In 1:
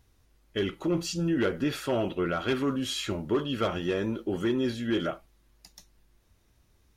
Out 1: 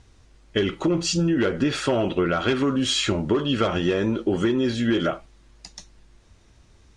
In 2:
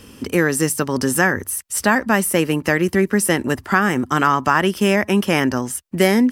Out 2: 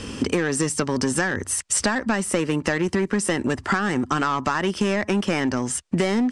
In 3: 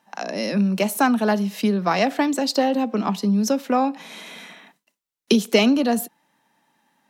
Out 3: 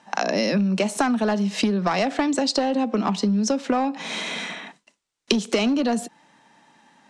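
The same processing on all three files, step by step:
in parallel at -6.5 dB: wavefolder -15 dBFS; on the sum: steep low-pass 8.8 kHz 36 dB/octave; compression 12:1, threshold -25 dBFS; normalise loudness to -23 LUFS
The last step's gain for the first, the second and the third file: +7.5 dB, +6.0 dB, +6.5 dB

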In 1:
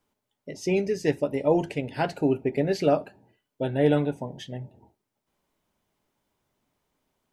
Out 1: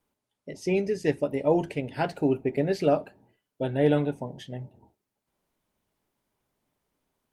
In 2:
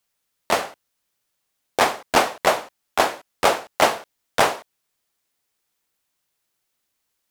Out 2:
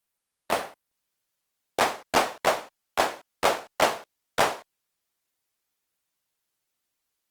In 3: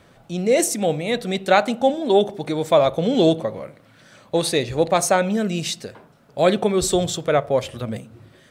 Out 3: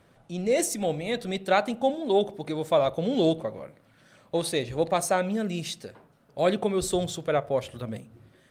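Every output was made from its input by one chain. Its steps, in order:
Opus 32 kbps 48 kHz; normalise loudness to -27 LUFS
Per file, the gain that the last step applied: -1.0 dB, -5.0 dB, -6.5 dB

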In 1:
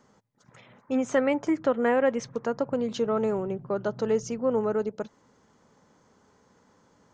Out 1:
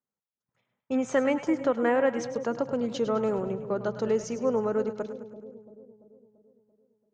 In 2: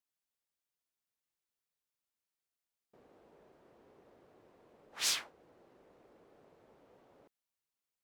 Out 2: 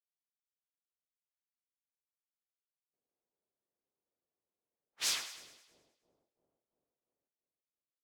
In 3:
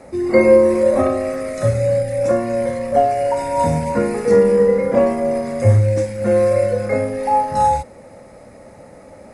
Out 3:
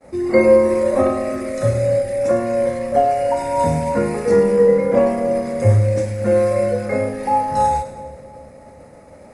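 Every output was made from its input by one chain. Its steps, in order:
expander -38 dBFS; on a send: two-band feedback delay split 620 Hz, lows 339 ms, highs 104 ms, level -11.5 dB; on the sum: trim -1 dB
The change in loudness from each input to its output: -1.0 LU, -1.5 LU, -0.5 LU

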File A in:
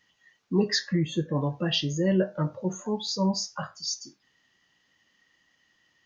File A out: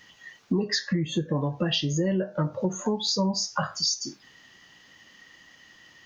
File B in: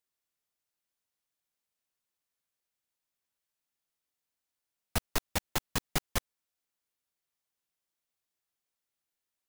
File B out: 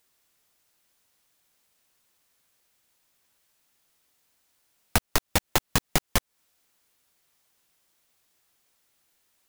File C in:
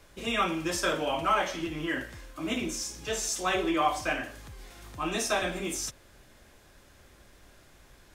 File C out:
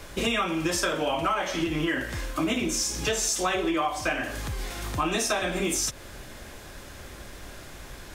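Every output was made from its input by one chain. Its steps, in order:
compression 10:1, threshold -37 dBFS; normalise loudness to -27 LUFS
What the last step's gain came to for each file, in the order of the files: +14.0 dB, +17.5 dB, +13.5 dB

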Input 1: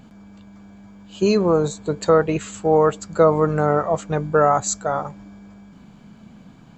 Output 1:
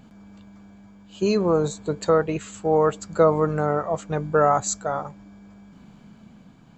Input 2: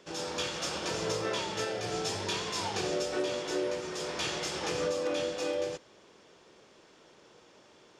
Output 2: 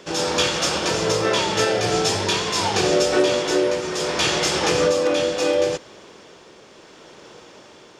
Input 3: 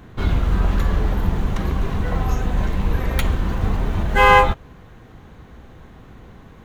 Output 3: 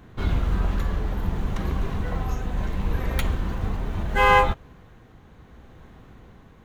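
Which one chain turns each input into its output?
tremolo triangle 0.72 Hz, depth 30%; peak normalisation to -6 dBFS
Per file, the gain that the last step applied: -2.0 dB, +14.5 dB, -4.0 dB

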